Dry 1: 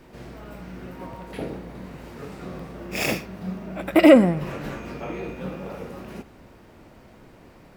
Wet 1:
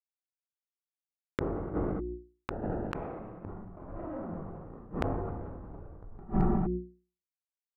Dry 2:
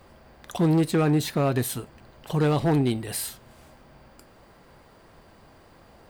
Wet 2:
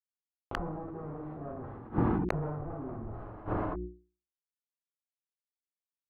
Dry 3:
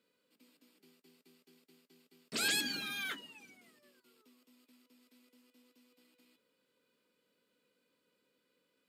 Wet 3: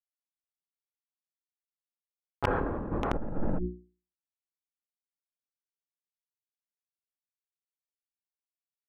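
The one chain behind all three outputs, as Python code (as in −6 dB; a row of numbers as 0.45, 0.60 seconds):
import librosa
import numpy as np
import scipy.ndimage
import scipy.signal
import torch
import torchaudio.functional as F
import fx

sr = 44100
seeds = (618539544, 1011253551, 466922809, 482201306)

y = fx.delta_hold(x, sr, step_db=-24.0)
y = fx.fuzz(y, sr, gain_db=35.0, gate_db=-33.0)
y = scipy.signal.sosfilt(scipy.signal.butter(4, 1200.0, 'lowpass', fs=sr, output='sos'), y)
y = fx.hum_notches(y, sr, base_hz=60, count=6)
y = y + 10.0 ** (-18.0 / 20.0) * np.pad(y, (int(208 * sr / 1000.0), 0))[:len(y)]
y = fx.rev_gated(y, sr, seeds[0], gate_ms=270, shape='falling', drr_db=-5.0)
y = fx.gate_flip(y, sr, shuts_db=-16.0, range_db=-37)
y = 10.0 ** (-23.0 / 20.0) * (np.abs((y / 10.0 ** (-23.0 / 20.0) + 3.0) % 4.0 - 2.0) - 1.0)
y = fx.sustainer(y, sr, db_per_s=25.0)
y = y * librosa.db_to_amplitude(7.5)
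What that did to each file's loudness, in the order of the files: −13.5, −12.0, +2.0 LU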